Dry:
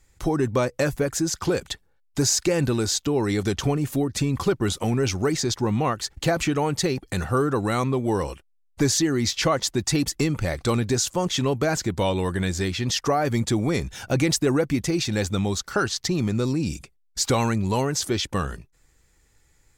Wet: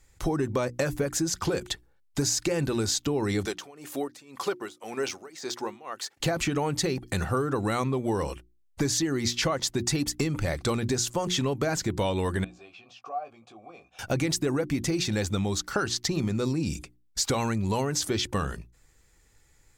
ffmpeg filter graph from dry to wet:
-filter_complex "[0:a]asettb=1/sr,asplit=3[a][b][c];[a]atrim=end=3.454[d];[b]atrim=start=3.45:end=6.2,asetpts=PTS-STARTPTS,afade=t=in:d=0.004:c=qsin,afade=t=out:st=2.746:d=0.004:c=qsin,deesser=0.6,highpass=450,tremolo=f=1.9:d=0.92[e];[c]atrim=start=6.196[f];[d][e]acrossfade=d=0.004:c1=hsin:c2=qsin[g];[g][f]acrossfade=d=0.004:c1=qsin:c2=hsin,asettb=1/sr,asplit=3[h][i][j];[h]atrim=end=12.444[k];[i]atrim=start=12.44:end=13.99,asetpts=PTS-STARTPTS,afade=t=in:d=0.004:c=qsin,afade=t=out:st=1.546:d=0.004:c=qsin,acompressor=threshold=-30dB:ratio=2.5:attack=3.2:release=140:knee=1:detection=peak,asplit=3[l][m][n];[l]bandpass=f=730:t=q:w=8,volume=0dB[o];[m]bandpass=f=1.09k:t=q:w=8,volume=-6dB[p];[n]bandpass=f=2.44k:t=q:w=8,volume=-9dB[q];[o][p][q]amix=inputs=3:normalize=0,asplit=2[r][s];[s]adelay=18,volume=-7dB[t];[r][t]amix=inputs=2:normalize=0,atrim=end_sample=68355[u];[j]atrim=start=13.986[v];[k][u]acrossfade=d=0.004:c1=hsin:c2=qsin[w];[w][v]acrossfade=d=0.004:c1=qsin:c2=hsin,bandreject=f=60:t=h:w=6,bandreject=f=120:t=h:w=6,bandreject=f=180:t=h:w=6,bandreject=f=240:t=h:w=6,bandreject=f=300:t=h:w=6,bandreject=f=360:t=h:w=6,acompressor=threshold=-23dB:ratio=6"

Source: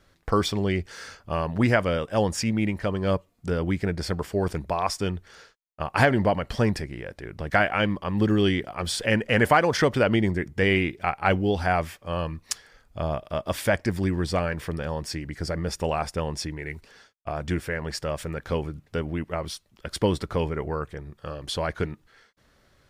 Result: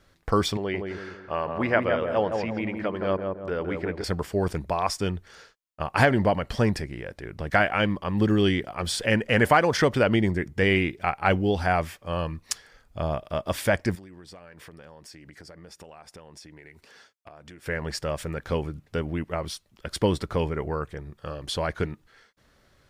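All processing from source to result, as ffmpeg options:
-filter_complex "[0:a]asettb=1/sr,asplit=3[a][b][c];[a]atrim=end=0.574[d];[b]atrim=start=0.57:end=4.04,asetpts=PTS-STARTPTS,afade=t=in:d=0.004:c=qsin,afade=t=out:st=3.466:d=0.004:c=qsin,acrossover=split=4900[e][f];[f]acompressor=threshold=-57dB:ratio=4:attack=1:release=60[g];[e][g]amix=inputs=2:normalize=0,bass=f=250:g=-12,treble=f=4k:g=-12,asplit=2[h][i];[i]adelay=167,lowpass=f=1.2k:p=1,volume=-3.5dB,asplit=2[j][k];[k]adelay=167,lowpass=f=1.2k:p=1,volume=0.47,asplit=2[l][m];[m]adelay=167,lowpass=f=1.2k:p=1,volume=0.47,asplit=2[n][o];[o]adelay=167,lowpass=f=1.2k:p=1,volume=0.47,asplit=2[p][q];[q]adelay=167,lowpass=f=1.2k:p=1,volume=0.47,asplit=2[r][s];[s]adelay=167,lowpass=f=1.2k:p=1,volume=0.47[t];[h][j][l][n][p][r][t]amix=inputs=7:normalize=0,atrim=end_sample=153027[u];[c]atrim=start=4.036[v];[d][u]acrossfade=d=0.004:c1=hsin:c2=qsin[w];[w][v]acrossfade=d=0.004:c1=qsin:c2=hsin,asettb=1/sr,asplit=3[x][y][z];[x]atrim=end=13.954[aa];[y]atrim=start=13.95:end=17.66,asetpts=PTS-STARTPTS,afade=t=in:d=0.004:c=qsin,afade=t=out:st=3.706:d=0.004:c=qsin,highpass=f=220:p=1,acompressor=threshold=-43dB:ratio=8:attack=3.2:release=140:knee=1:detection=peak[ab];[z]atrim=start=17.656[ac];[aa][ab]acrossfade=d=0.004:c1=hsin:c2=qsin[ad];[ad][ac]acrossfade=d=0.004:c1=qsin:c2=hsin"

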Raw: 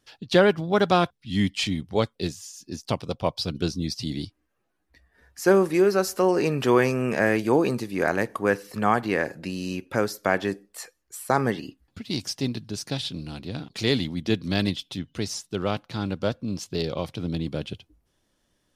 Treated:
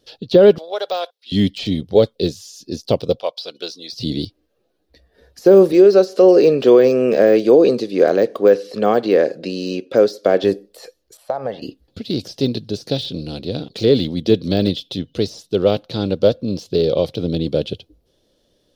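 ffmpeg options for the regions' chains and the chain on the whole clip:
-filter_complex "[0:a]asettb=1/sr,asplit=3[a][b][c];[a]atrim=end=0.584[d];[b]atrim=start=0.58:end=1.32,asetpts=PTS-STARTPTS,afade=t=in:d=0.004:c=qsin,afade=t=out:st=0.736:d=0.004:c=qsin,acompressor=threshold=-27dB:ratio=2:attack=3.2:release=140:knee=1:detection=peak,highpass=f=580:w=0.5412,highpass=f=580:w=1.3066,asoftclip=type=hard:threshold=-20.5dB[e];[c]atrim=start=1.316[f];[d][e]acrossfade=d=0.004:c1=hsin:c2=qsin[g];[g][f]acrossfade=d=0.004:c1=qsin:c2=hsin,asettb=1/sr,asplit=3[h][i][j];[h]atrim=end=3.194[k];[i]atrim=start=3.19:end=3.93,asetpts=PTS-STARTPTS,afade=t=in:d=0.004:c=qsin,afade=t=out:st=0.736:d=0.004:c=qsin,highpass=910,highshelf=f=4.9k:g=-6[l];[j]atrim=start=3.926[m];[k][l]acrossfade=d=0.004:c1=hsin:c2=qsin[n];[n][m]acrossfade=d=0.004:c1=qsin:c2=hsin,asettb=1/sr,asplit=3[o][p][q];[o]atrim=end=5.724[r];[p]atrim=start=5.72:end=10.44,asetpts=PTS-STARTPTS,afade=t=in:d=0.004:c=qsin,afade=t=out:st=4.716:d=0.004:c=qsin,highpass=200,lowpass=7.4k,bandreject=f=880:w=9.4[s];[q]atrim=start=10.436[t];[r][s]acrossfade=d=0.004:c1=hsin:c2=qsin[u];[u][t]acrossfade=d=0.004:c1=qsin:c2=hsin,asettb=1/sr,asplit=3[v][w][x];[v]atrim=end=11.174[y];[w]atrim=start=11.17:end=11.62,asetpts=PTS-STARTPTS,afade=t=in:d=0.004:c=qsin,afade=t=out:st=0.446:d=0.004:c=qsin,lowpass=f=1.1k:p=1,lowshelf=f=500:t=q:w=3:g=-9.5,acompressor=threshold=-29dB:ratio=3:attack=3.2:release=140:knee=1:detection=peak[z];[x]atrim=start=11.616[aa];[y][z]acrossfade=d=0.004:c1=hsin:c2=qsin[ab];[ab][aa]acrossfade=d=0.004:c1=qsin:c2=hsin,deesser=0.95,equalizer=f=500:t=o:w=1:g=12,equalizer=f=1k:t=o:w=1:g=-7,equalizer=f=2k:t=o:w=1:g=-7,equalizer=f=4k:t=o:w=1:g=9,equalizer=f=8k:t=o:w=1:g=-6,alimiter=level_in=6.5dB:limit=-1dB:release=50:level=0:latency=1,volume=-1dB"

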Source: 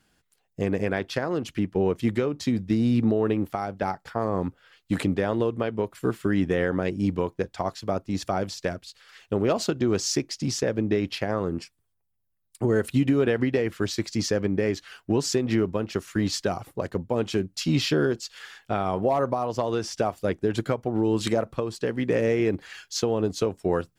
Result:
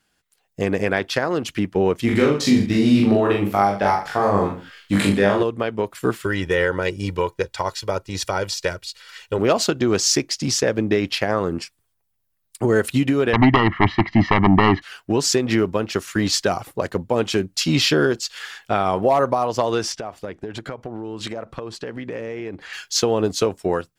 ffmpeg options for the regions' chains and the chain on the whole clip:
-filter_complex "[0:a]asettb=1/sr,asplit=3[a][b][c];[a]atrim=end=2.064[d];[b]atrim=start=2.06:end=5.43,asetpts=PTS-STARTPTS,afade=t=in:d=0.004:c=qsin,afade=t=out:st=3.366:d=0.004:c=qsin,asplit=2[e][f];[f]adelay=40,volume=-2.5dB[g];[e][g]amix=inputs=2:normalize=0,atrim=end_sample=148617,aecho=1:1:20|45|76.25|115.3|164.1:0.631|0.398|0.251|0.158|0.1,atrim=end_sample=148617[h];[c]atrim=start=5.426[i];[d][h]acrossfade=d=0.004:c1=hsin:c2=qsin[j];[j][i]acrossfade=d=0.004:c1=qsin:c2=hsin,asettb=1/sr,asplit=3[k][l][m];[k]atrim=end=6.244[n];[l]atrim=start=6.24:end=9.39,asetpts=PTS-STARTPTS,afade=t=in:d=0.004:c=qsin,afade=t=out:st=3.146:d=0.004:c=qsin,equalizer=f=360:w=0.39:g=-4.5,aecho=1:1:2.1:0.62,atrim=end_sample=138915[o];[m]atrim=start=9.386[p];[n][o]acrossfade=d=0.004:c1=hsin:c2=qsin[q];[q][p]acrossfade=d=0.004:c1=qsin:c2=hsin,asettb=1/sr,asplit=3[r][s][t];[r]atrim=end=13.334[u];[s]atrim=start=13.33:end=14.82,asetpts=PTS-STARTPTS,afade=t=in:d=0.004:c=qsin,afade=t=out:st=1.486:d=0.004:c=qsin,lowpass=f=2.1k:w=0.5412,lowpass=f=2.1k:w=1.3066,aeval=exprs='0.251*sin(PI/2*2.24*val(0)/0.251)':c=same,aecho=1:1:1:0.87,atrim=end_sample=65709[v];[t]atrim=start=14.816[w];[u][v]acrossfade=d=0.004:c1=hsin:c2=qsin[x];[x][w]acrossfade=d=0.004:c1=qsin:c2=hsin,asettb=1/sr,asplit=3[y][z][aa];[y]atrim=end=19.924[ab];[z]atrim=start=19.92:end=22.73,asetpts=PTS-STARTPTS,afade=t=in:d=0.004:c=qsin,afade=t=out:st=2.806:d=0.004:c=qsin,aemphasis=mode=reproduction:type=50kf,acompressor=threshold=-32dB:ratio=6:attack=3.2:release=140:knee=1:detection=peak[ac];[aa]atrim=start=22.726[ad];[ab][ac]acrossfade=d=0.004:c1=hsin:c2=qsin[ae];[ae][ad]acrossfade=d=0.004:c1=qsin:c2=hsin,lowshelf=f=500:g=-7,dynaudnorm=f=160:g=5:m=9.5dB"

